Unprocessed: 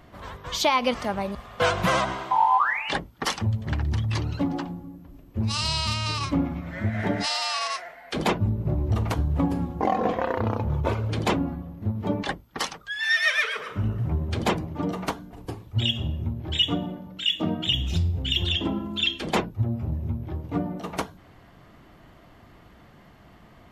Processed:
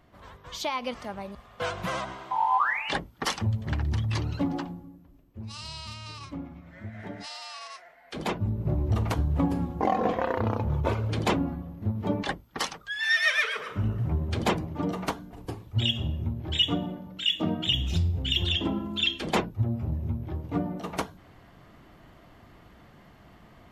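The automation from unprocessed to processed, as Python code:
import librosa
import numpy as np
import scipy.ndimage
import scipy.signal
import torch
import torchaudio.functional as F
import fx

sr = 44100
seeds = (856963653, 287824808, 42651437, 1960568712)

y = fx.gain(x, sr, db=fx.line((2.19, -9.0), (2.65, -2.0), (4.59, -2.0), (5.38, -13.5), (7.72, -13.5), (8.69, -1.5)))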